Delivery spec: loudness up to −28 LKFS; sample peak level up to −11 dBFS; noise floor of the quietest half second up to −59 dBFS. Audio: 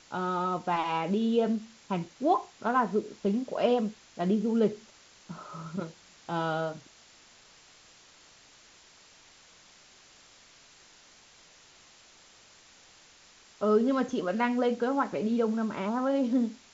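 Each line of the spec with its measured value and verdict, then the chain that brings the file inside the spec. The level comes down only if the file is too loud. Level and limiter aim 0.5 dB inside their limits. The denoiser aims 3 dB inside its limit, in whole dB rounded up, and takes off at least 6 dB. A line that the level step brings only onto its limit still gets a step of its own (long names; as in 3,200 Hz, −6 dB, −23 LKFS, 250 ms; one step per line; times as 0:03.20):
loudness −29.0 LKFS: in spec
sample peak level −13.5 dBFS: in spec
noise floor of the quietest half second −57 dBFS: out of spec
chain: broadband denoise 6 dB, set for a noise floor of −57 dBFS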